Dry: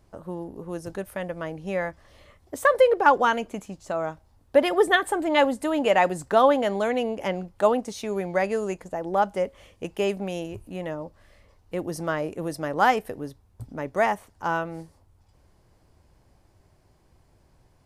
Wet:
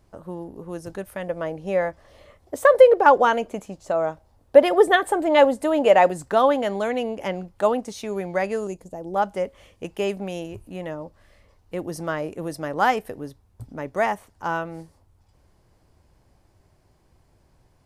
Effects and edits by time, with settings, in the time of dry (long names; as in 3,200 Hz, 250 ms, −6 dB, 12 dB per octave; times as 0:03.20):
0:01.27–0:06.11: parametric band 570 Hz +6.5 dB 1.2 octaves
0:08.67–0:09.16: parametric band 1,600 Hz −14.5 dB 1.9 octaves